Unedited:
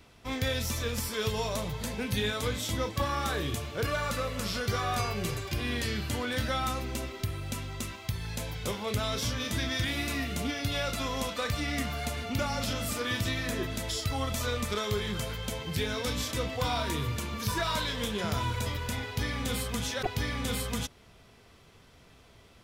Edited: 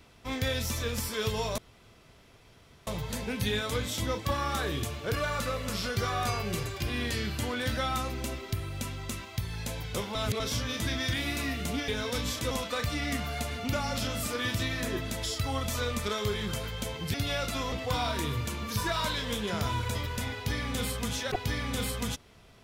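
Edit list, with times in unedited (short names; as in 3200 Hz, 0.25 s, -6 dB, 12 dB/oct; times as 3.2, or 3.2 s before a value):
1.58 insert room tone 1.29 s
8.86–9.11 reverse
10.59–11.17 swap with 15.8–16.43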